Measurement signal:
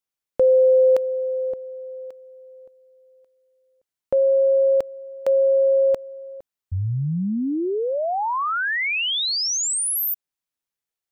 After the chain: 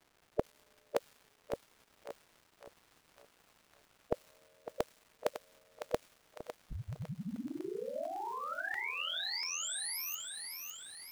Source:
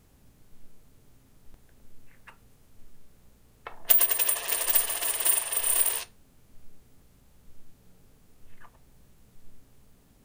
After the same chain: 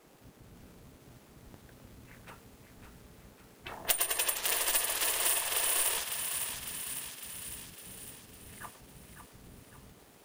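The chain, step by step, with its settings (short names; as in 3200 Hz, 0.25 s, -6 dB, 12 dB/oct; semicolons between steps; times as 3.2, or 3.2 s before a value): spectral gate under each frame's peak -10 dB weak; compressor 2:1, threshold -42 dBFS; crackle 410/s -55 dBFS; on a send: thinning echo 0.554 s, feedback 63%, high-pass 780 Hz, level -6 dB; on the sum: crackling interface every 0.69 s, samples 64, repeat, from 0.46; mismatched tape noise reduction decoder only; gain +8 dB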